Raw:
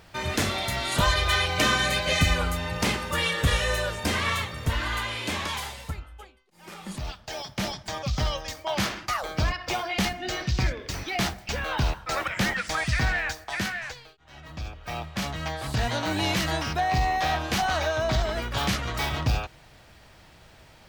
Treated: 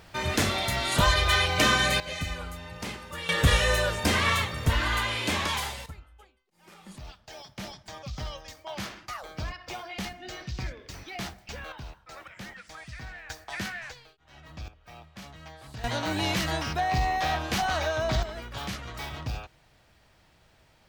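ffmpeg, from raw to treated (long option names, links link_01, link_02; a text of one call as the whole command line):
ffmpeg -i in.wav -af "asetnsamples=nb_out_samples=441:pad=0,asendcmd='2 volume volume -11dB;3.29 volume volume 2dB;5.86 volume volume -9.5dB;11.72 volume volume -17dB;13.3 volume volume -5dB;14.68 volume volume -14.5dB;15.84 volume volume -2dB;18.23 volume volume -9dB',volume=0.5dB" out.wav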